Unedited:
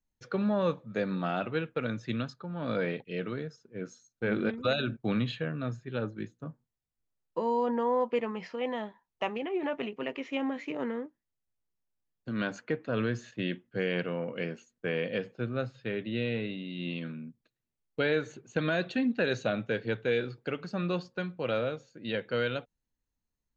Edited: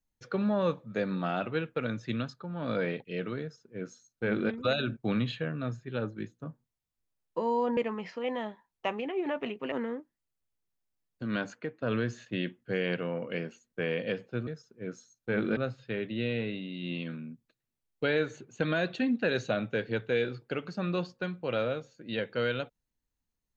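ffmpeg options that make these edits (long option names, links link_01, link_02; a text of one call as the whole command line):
ffmpeg -i in.wav -filter_complex "[0:a]asplit=6[link_01][link_02][link_03][link_04][link_05][link_06];[link_01]atrim=end=7.772[link_07];[link_02]atrim=start=8.138:end=10.092[link_08];[link_03]atrim=start=10.778:end=12.88,asetpts=PTS-STARTPTS,afade=type=out:start_time=1.702:duration=0.4:silence=0.266073[link_09];[link_04]atrim=start=12.88:end=15.532,asetpts=PTS-STARTPTS,afade=type=in:duration=0.004:curve=hsin:silence=0.266073[link_10];[link_05]atrim=start=3.408:end=4.512[link_11];[link_06]atrim=start=15.528[link_12];[link_07][link_08]acrossfade=duration=0.004:curve1=hsin:curve2=hsin[link_13];[link_09][link_10]concat=n=2:v=0:a=1[link_14];[link_13][link_14]acrossfade=duration=0.004:curve1=hsin:curve2=hsin[link_15];[link_15][link_11]acrossfade=duration=0.004:curve1=hsin:curve2=hsin[link_16];[link_16][link_12]acrossfade=duration=0.004:curve1=hsin:curve2=hsin" out.wav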